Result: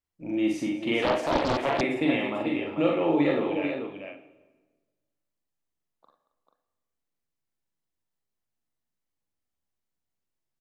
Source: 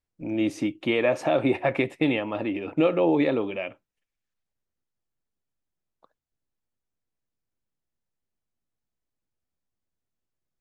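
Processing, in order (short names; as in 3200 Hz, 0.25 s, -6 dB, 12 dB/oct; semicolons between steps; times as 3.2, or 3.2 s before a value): low shelf 110 Hz -7 dB; doubler 42 ms -4 dB; tapped delay 43/55/227/441 ms -6.5/-6/-18.5/-6.5 dB; on a send at -12 dB: reverb RT60 1.3 s, pre-delay 35 ms; 1.02–1.81 on the sum: Doppler distortion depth 0.92 ms; gain -4 dB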